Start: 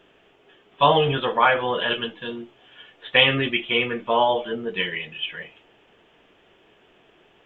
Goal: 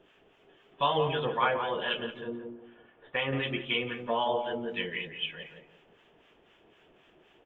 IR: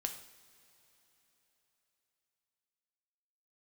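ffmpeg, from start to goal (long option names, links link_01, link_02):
-filter_complex "[0:a]asettb=1/sr,asplit=3[link_01][link_02][link_03];[link_01]atrim=end=2.214[link_04];[link_02]atrim=start=2.21:end=3.33,asetpts=PTS-STARTPTS,afade=type=in:duration=0.004:curve=qsin,afade=type=out:start_time=1.116:duration=0.004:curve=qsin,lowpass=1500[link_05];[link_03]atrim=start=3.326[link_06];[link_04][link_05]acrossfade=duration=0.004:curve1=hsin:curve2=qsin[link_07];[link_07][link_06]acrossfade=duration=0.004:curve1=qsin:curve2=hsin,asplit=2[link_08][link_09];[link_09]acompressor=threshold=-31dB:ratio=6,volume=-1.5dB[link_10];[link_08][link_10]amix=inputs=2:normalize=0,acrossover=split=870[link_11][link_12];[link_11]aeval=exprs='val(0)*(1-0.7/2+0.7/2*cos(2*PI*3.9*n/s))':channel_layout=same[link_13];[link_12]aeval=exprs='val(0)*(1-0.7/2-0.7/2*cos(2*PI*3.9*n/s))':channel_layout=same[link_14];[link_13][link_14]amix=inputs=2:normalize=0,asplit=2[link_15][link_16];[link_16]adelay=172,lowpass=frequency=980:poles=1,volume=-5dB,asplit=2[link_17][link_18];[link_18]adelay=172,lowpass=frequency=980:poles=1,volume=0.31,asplit=2[link_19][link_20];[link_20]adelay=172,lowpass=frequency=980:poles=1,volume=0.31,asplit=2[link_21][link_22];[link_22]adelay=172,lowpass=frequency=980:poles=1,volume=0.31[link_23];[link_15][link_17][link_19][link_21][link_23]amix=inputs=5:normalize=0,volume=-7.5dB"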